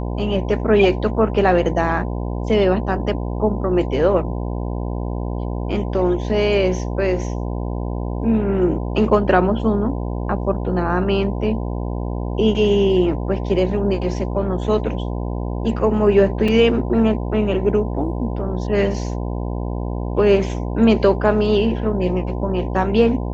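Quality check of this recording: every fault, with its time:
buzz 60 Hz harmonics 17 -24 dBFS
16.48 s: dropout 3.9 ms

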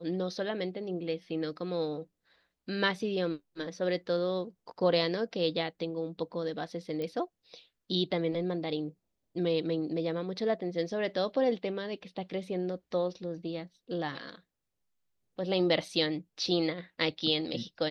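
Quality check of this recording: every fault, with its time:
7.02 s: pop -25 dBFS

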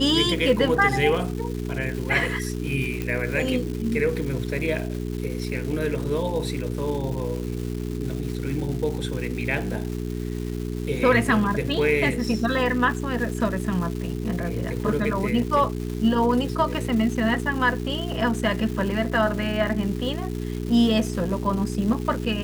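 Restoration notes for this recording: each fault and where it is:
crackle 550 per s -32 dBFS
hum 60 Hz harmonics 7 -29 dBFS
3.02 s: pop -14 dBFS

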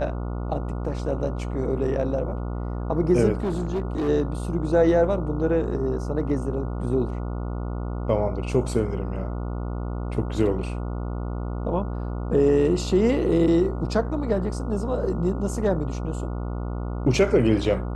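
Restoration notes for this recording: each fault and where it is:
buzz 60 Hz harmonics 24 -29 dBFS
3.35–4.09 s: clipped -21.5 dBFS

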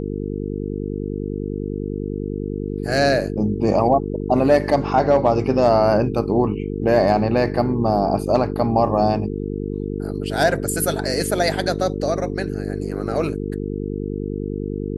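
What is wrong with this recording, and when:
buzz 50 Hz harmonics 9 -26 dBFS

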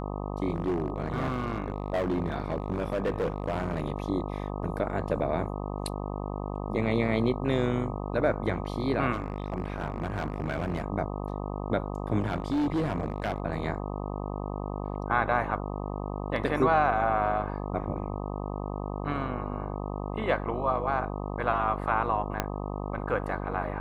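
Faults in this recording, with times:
buzz 50 Hz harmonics 25 -34 dBFS
0.53–3.92 s: clipped -23.5 dBFS
9.12–10.82 s: clipped -25 dBFS
12.19–13.40 s: clipped -23.5 dBFS
22.40 s: pop -11 dBFS

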